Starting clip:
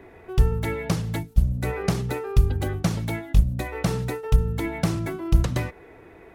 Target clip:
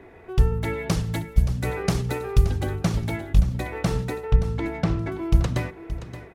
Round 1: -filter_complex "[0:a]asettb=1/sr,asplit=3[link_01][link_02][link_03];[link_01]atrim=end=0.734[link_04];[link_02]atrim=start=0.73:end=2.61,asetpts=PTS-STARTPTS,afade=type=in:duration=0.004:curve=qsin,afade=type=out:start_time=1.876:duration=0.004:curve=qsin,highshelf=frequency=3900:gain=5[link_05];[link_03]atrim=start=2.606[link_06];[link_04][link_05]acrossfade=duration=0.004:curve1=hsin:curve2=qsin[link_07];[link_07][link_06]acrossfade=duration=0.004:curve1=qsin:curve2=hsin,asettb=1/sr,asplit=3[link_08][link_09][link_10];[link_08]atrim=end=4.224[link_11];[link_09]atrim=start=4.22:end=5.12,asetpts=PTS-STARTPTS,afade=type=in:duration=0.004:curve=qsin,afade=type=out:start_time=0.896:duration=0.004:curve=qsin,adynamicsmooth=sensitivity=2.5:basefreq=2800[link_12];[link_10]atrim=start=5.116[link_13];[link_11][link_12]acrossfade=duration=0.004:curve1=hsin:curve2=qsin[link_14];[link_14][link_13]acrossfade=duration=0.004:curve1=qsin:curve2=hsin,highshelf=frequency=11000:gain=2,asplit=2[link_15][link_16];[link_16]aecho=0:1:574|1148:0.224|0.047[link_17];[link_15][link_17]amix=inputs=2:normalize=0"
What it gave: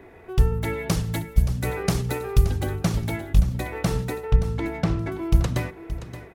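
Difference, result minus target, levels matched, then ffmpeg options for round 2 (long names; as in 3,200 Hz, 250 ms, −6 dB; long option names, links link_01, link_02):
8,000 Hz band +2.5 dB
-filter_complex "[0:a]asettb=1/sr,asplit=3[link_01][link_02][link_03];[link_01]atrim=end=0.734[link_04];[link_02]atrim=start=0.73:end=2.61,asetpts=PTS-STARTPTS,afade=type=in:duration=0.004:curve=qsin,afade=type=out:start_time=1.876:duration=0.004:curve=qsin,highshelf=frequency=3900:gain=5[link_05];[link_03]atrim=start=2.606[link_06];[link_04][link_05]acrossfade=duration=0.004:curve1=hsin:curve2=qsin[link_07];[link_07][link_06]acrossfade=duration=0.004:curve1=qsin:curve2=hsin,asettb=1/sr,asplit=3[link_08][link_09][link_10];[link_08]atrim=end=4.224[link_11];[link_09]atrim=start=4.22:end=5.12,asetpts=PTS-STARTPTS,afade=type=in:duration=0.004:curve=qsin,afade=type=out:start_time=0.896:duration=0.004:curve=qsin,adynamicsmooth=sensitivity=2.5:basefreq=2800[link_12];[link_10]atrim=start=5.116[link_13];[link_11][link_12]acrossfade=duration=0.004:curve1=hsin:curve2=qsin[link_14];[link_14][link_13]acrossfade=duration=0.004:curve1=qsin:curve2=hsin,highshelf=frequency=11000:gain=-8,asplit=2[link_15][link_16];[link_16]aecho=0:1:574|1148:0.224|0.047[link_17];[link_15][link_17]amix=inputs=2:normalize=0"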